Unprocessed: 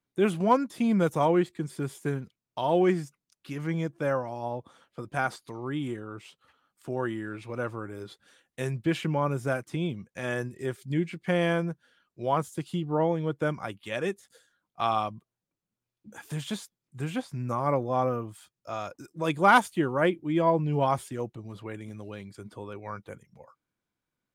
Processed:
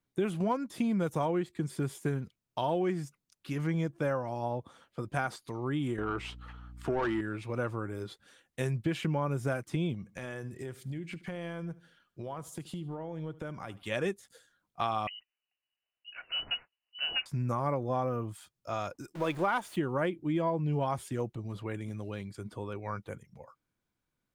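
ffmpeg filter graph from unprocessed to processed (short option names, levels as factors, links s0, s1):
-filter_complex "[0:a]asettb=1/sr,asplit=3[s0][s1][s2];[s0]atrim=end=5.984[s3];[s1]atrim=start=5.98:end=7.21,asetpts=PTS-STARTPTS,afade=t=in:d=0.004:c=qsin,afade=t=out:st=1.226:d=0.004:c=qsin,bandreject=f=550:w=5.4,asplit=2[s4][s5];[s5]highpass=f=720:p=1,volume=11.2,asoftclip=type=tanh:threshold=0.126[s6];[s4][s6]amix=inputs=2:normalize=0,lowpass=f=1500:p=1,volume=0.501,aeval=exprs='val(0)+0.00282*(sin(2*PI*60*n/s)+sin(2*PI*2*60*n/s)/2+sin(2*PI*3*60*n/s)/3+sin(2*PI*4*60*n/s)/4+sin(2*PI*5*60*n/s)/5)':c=same[s7];[s2]atrim=start=7.206[s8];[s3][s7]acrossfade=d=0.004:c1=hsin:c2=qsin[s9];[s9][s8]acrossfade=d=0.004:c1=qsin:c2=hsin,asettb=1/sr,asplit=3[s10][s11][s12];[s10]atrim=end=9.944[s13];[s11]atrim=start=9.94:end=13.83,asetpts=PTS-STARTPTS,afade=t=in:d=0.004:c=qsin,afade=t=out:st=3.886:d=0.004:c=qsin,acompressor=threshold=0.0141:ratio=6:attack=3.2:release=140:knee=1:detection=peak,aecho=1:1:76|152|228:0.112|0.0449|0.018,atrim=end_sample=171549[s14];[s12]atrim=start=13.826[s15];[s13][s14]acrossfade=d=0.004:c1=hsin:c2=qsin[s16];[s16][s15]acrossfade=d=0.004:c1=qsin:c2=hsin,asettb=1/sr,asplit=3[s17][s18][s19];[s17]atrim=end=15.074[s20];[s18]atrim=start=15.07:end=17.26,asetpts=PTS-STARTPTS,afade=t=in:d=0.004:c=qsin,afade=t=out:st=2.186:d=0.004:c=qsin,highpass=120,lowpass=f=2600:t=q:w=0.5098,lowpass=f=2600:t=q:w=0.6013,lowpass=f=2600:t=q:w=0.9,lowpass=f=2600:t=q:w=2.563,afreqshift=-3100[s21];[s19]atrim=start=17.256[s22];[s20][s21]acrossfade=d=0.004:c1=hsin:c2=qsin[s23];[s23][s22]acrossfade=d=0.004:c1=qsin:c2=hsin,asettb=1/sr,asplit=3[s24][s25][s26];[s24]atrim=end=19.154[s27];[s25]atrim=start=19.15:end=19.76,asetpts=PTS-STARTPTS,afade=t=in:d=0.004:c=qsin,afade=t=out:st=0.606:d=0.004:c=qsin,aeval=exprs='val(0)+0.5*0.015*sgn(val(0))':c=same,bass=f=250:g=-8,treble=f=4000:g=-6[s28];[s26]atrim=start=19.756[s29];[s27][s28]acrossfade=d=0.004:c1=hsin:c2=qsin[s30];[s30][s29]acrossfade=d=0.004:c1=qsin:c2=hsin,lowshelf=f=94:g=8,acompressor=threshold=0.0447:ratio=6"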